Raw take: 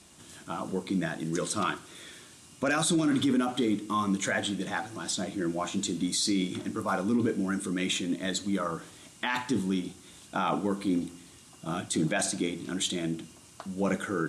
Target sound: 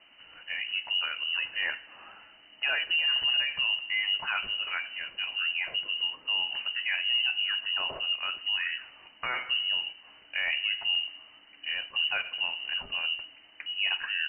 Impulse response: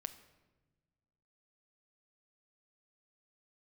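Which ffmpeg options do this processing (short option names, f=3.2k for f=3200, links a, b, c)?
-filter_complex "[0:a]asplit=2[a][b];[b]alimiter=limit=-24dB:level=0:latency=1:release=114,volume=2.5dB[c];[a][c]amix=inputs=2:normalize=0,lowpass=f=2.6k:t=q:w=0.5098,lowpass=f=2.6k:t=q:w=0.6013,lowpass=f=2.6k:t=q:w=0.9,lowpass=f=2.6k:t=q:w=2.563,afreqshift=-3100,volume=-6dB"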